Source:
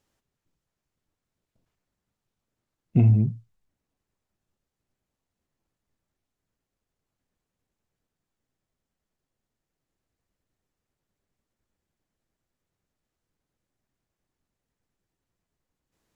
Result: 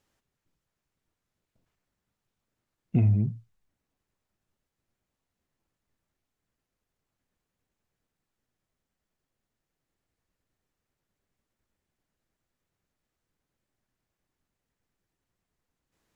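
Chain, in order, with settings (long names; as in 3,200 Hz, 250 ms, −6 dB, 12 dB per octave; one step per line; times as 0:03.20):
in parallel at −0.5 dB: downward compressor, threshold −26 dBFS, peak gain reduction 11.5 dB
on the sum: parametric band 1,800 Hz +2.5 dB 1.8 octaves
wow of a warped record 33 1/3 rpm, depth 100 cents
level −6.5 dB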